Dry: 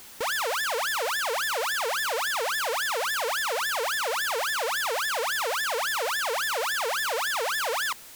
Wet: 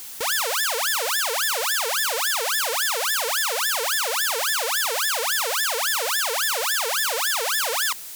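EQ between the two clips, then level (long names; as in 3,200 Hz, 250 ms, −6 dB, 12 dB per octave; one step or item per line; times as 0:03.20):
high-shelf EQ 3,200 Hz +10.5 dB
0.0 dB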